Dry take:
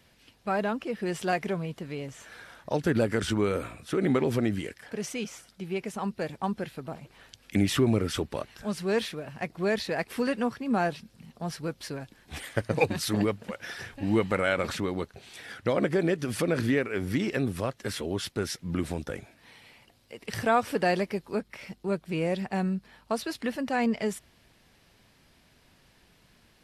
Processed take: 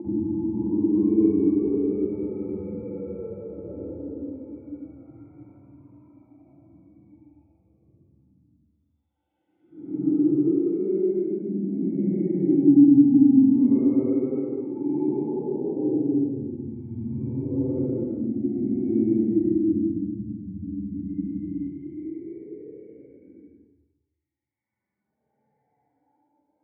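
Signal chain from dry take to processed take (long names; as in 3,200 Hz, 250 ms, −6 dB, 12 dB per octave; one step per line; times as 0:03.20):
spectral dynamics exaggerated over time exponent 1.5
high-pass filter 77 Hz 24 dB per octave
notch filter 1,700 Hz, Q 5
in parallel at +1.5 dB: downward compressor, threshold −39 dBFS, peak gain reduction 18.5 dB
on the sum: extreme stretch with random phases 17×, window 0.05 s, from 0:03.34
formant resonators in series u
convolution reverb RT60 0.85 s, pre-delay 45 ms, DRR −3 dB
level −4.5 dB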